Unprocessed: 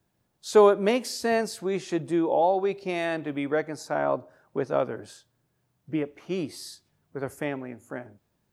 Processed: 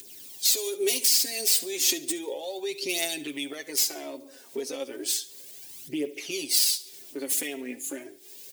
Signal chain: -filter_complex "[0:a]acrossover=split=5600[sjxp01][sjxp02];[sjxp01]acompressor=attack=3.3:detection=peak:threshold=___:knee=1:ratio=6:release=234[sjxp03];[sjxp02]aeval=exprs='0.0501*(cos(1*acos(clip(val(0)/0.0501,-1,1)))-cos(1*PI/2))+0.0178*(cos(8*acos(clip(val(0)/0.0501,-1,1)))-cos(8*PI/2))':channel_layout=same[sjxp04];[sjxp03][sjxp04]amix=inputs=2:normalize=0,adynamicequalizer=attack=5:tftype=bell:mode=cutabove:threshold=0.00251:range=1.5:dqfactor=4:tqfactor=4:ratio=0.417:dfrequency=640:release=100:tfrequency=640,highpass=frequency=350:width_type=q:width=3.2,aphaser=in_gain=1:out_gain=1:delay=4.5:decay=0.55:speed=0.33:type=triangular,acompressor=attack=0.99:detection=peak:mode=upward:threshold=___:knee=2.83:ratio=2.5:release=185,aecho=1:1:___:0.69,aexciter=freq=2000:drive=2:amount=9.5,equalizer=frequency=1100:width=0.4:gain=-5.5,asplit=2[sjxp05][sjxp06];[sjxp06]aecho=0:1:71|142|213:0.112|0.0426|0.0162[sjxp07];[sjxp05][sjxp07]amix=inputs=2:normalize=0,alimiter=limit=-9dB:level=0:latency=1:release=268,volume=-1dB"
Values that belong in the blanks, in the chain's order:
-34dB, -43dB, 7.4